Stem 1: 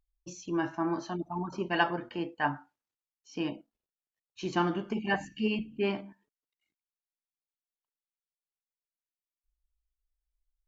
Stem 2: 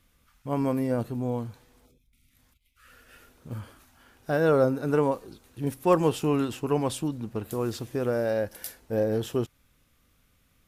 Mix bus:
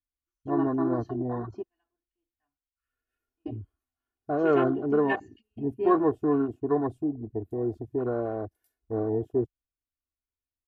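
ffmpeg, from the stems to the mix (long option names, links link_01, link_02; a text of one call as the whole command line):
ffmpeg -i stem1.wav -i stem2.wav -filter_complex "[0:a]volume=-3.5dB[link_01];[1:a]afwtdn=0.0126,equalizer=frequency=4400:width_type=o:width=2.6:gain=-5,volume=-2dB,asplit=2[link_02][link_03];[link_03]apad=whole_len=470708[link_04];[link_01][link_04]sidechaingate=range=-37dB:threshold=-52dB:ratio=16:detection=peak[link_05];[link_05][link_02]amix=inputs=2:normalize=0,afwtdn=0.02,aecho=1:1:2.8:0.83" out.wav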